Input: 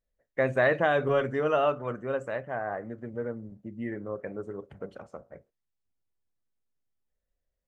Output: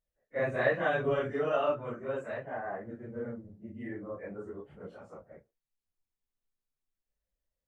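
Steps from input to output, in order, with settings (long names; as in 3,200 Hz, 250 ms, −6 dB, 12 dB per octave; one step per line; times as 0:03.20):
random phases in long frames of 100 ms
level −4.5 dB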